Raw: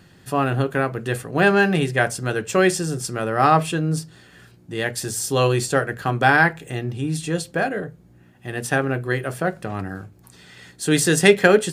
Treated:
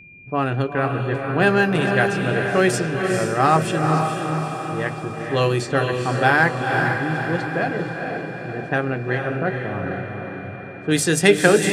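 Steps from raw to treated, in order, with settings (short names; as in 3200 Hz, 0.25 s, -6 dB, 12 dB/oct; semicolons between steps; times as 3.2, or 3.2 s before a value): low-pass opened by the level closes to 340 Hz, open at -14 dBFS; diffused feedback echo 0.459 s, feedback 56%, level -4 dB; whine 2400 Hz -42 dBFS; gain -1 dB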